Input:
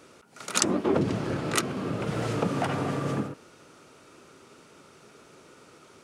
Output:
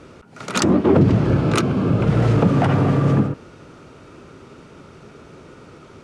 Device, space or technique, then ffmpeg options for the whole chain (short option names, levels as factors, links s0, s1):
parallel distortion: -filter_complex "[0:a]aemphasis=mode=reproduction:type=bsi,asplit=2[s0][s1];[s1]asoftclip=type=hard:threshold=0.075,volume=0.398[s2];[s0][s2]amix=inputs=2:normalize=0,asettb=1/sr,asplit=3[s3][s4][s5];[s3]atrim=end=1.274[s6];[s4]atrim=start=1.27:end=2.03,asetpts=PTS-STARTPTS,afade=t=in:d=0.004:c=qsin,afade=t=out:st=0.756:d=0.004:c=qsin,bandreject=f=1900:w=9[s7];[s5]atrim=start=2.026[s8];[s6][s7]acrossfade=d=0.004:c1=hsin:c2=qsin[s9];[s9][s8]acrossfade=d=0.004:c1=qsin:c2=hsin,volume=1.78"